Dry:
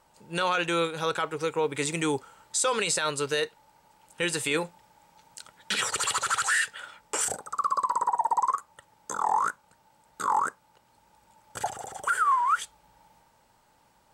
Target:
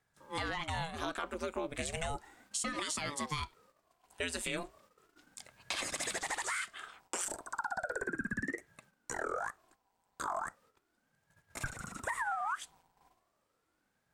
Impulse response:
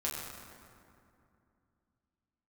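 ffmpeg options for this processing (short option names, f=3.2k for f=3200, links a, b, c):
-af "acompressor=threshold=-28dB:ratio=6,agate=range=-10dB:threshold=-58dB:ratio=16:detection=peak,aeval=exprs='val(0)*sin(2*PI*430*n/s+430*0.8/0.35*sin(2*PI*0.35*n/s))':c=same,volume=-2.5dB"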